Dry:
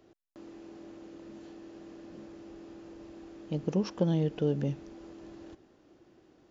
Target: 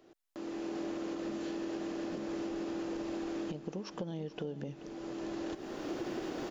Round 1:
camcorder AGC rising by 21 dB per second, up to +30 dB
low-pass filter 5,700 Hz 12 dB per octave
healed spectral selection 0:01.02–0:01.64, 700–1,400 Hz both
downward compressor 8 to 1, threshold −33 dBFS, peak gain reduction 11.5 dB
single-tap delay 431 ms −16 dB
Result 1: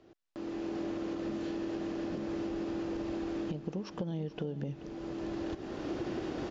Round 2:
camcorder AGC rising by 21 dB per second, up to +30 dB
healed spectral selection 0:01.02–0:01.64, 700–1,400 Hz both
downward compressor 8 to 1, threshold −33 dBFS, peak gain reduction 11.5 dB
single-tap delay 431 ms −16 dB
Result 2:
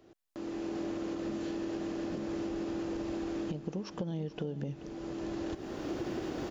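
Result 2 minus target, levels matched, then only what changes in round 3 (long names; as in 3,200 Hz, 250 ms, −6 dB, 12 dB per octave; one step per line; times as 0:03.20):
125 Hz band +4.0 dB
add after downward compressor: parametric band 65 Hz −11.5 dB 2.4 octaves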